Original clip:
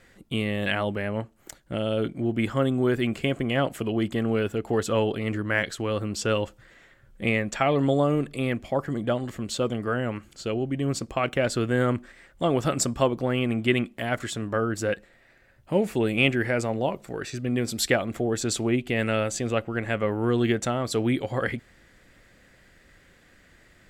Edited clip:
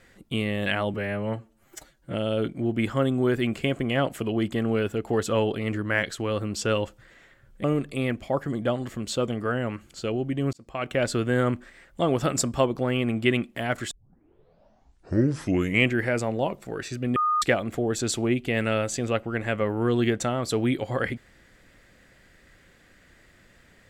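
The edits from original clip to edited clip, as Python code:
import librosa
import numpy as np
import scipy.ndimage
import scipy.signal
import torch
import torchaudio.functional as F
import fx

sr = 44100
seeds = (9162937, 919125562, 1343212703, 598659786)

y = fx.edit(x, sr, fx.stretch_span(start_s=0.94, length_s=0.8, factor=1.5),
    fx.cut(start_s=7.24, length_s=0.82),
    fx.fade_in_span(start_s=10.95, length_s=0.48),
    fx.tape_start(start_s=14.33, length_s=2.07),
    fx.bleep(start_s=17.58, length_s=0.26, hz=1230.0, db=-20.0), tone=tone)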